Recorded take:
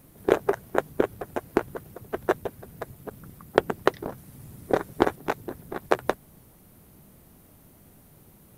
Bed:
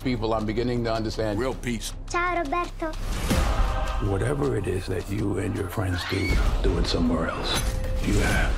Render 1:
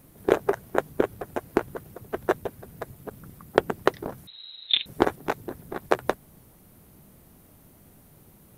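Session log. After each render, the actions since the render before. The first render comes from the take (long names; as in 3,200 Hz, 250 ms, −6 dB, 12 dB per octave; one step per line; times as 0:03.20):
0:04.27–0:04.86: voice inversion scrambler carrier 4,000 Hz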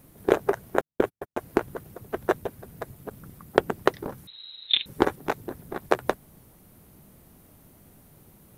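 0:00.81–0:01.39: noise gate −35 dBFS, range −51 dB
0:04.01–0:05.19: Butterworth band-reject 680 Hz, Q 6.2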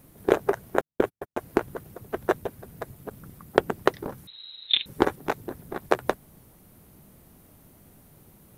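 no processing that can be heard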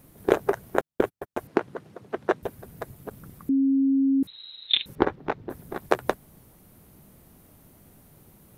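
0:01.47–0:02.43: band-pass filter 150–5,300 Hz
0:03.49–0:04.23: beep over 271 Hz −18 dBFS
0:04.95–0:05.50: high-frequency loss of the air 220 metres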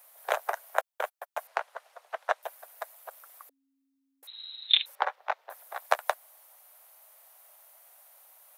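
Butterworth high-pass 600 Hz 48 dB per octave
high-shelf EQ 10,000 Hz +4.5 dB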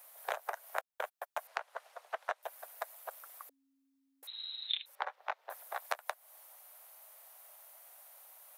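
downward compressor 5 to 1, threshold −34 dBFS, peak gain reduction 16.5 dB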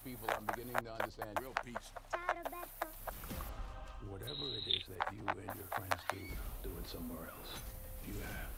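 mix in bed −22.5 dB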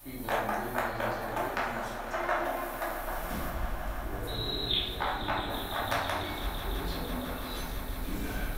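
echo that builds up and dies away 167 ms, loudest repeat 5, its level −15 dB
rectangular room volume 340 cubic metres, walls mixed, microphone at 2.6 metres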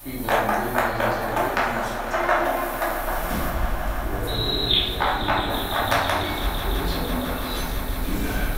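level +9.5 dB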